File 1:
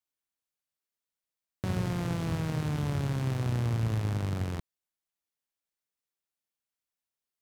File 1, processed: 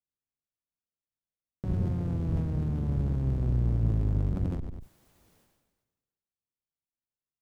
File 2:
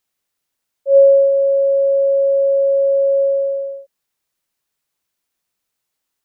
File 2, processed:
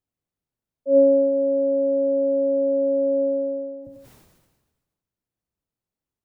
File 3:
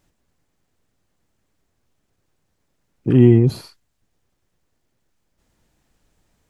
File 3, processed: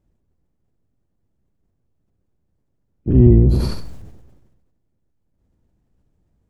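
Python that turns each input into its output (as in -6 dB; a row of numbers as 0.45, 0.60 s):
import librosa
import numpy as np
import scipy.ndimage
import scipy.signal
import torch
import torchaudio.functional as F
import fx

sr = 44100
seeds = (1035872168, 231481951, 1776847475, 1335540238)

p1 = fx.octave_divider(x, sr, octaves=1, level_db=0.0)
p2 = fx.tilt_shelf(p1, sr, db=9.0, hz=860.0)
p3 = p2 + fx.echo_feedback(p2, sr, ms=97, feedback_pct=15, wet_db=-17, dry=0)
p4 = fx.sustainer(p3, sr, db_per_s=43.0)
y = p4 * librosa.db_to_amplitude(-9.5)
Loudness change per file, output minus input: +2.0, -6.5, 0.0 LU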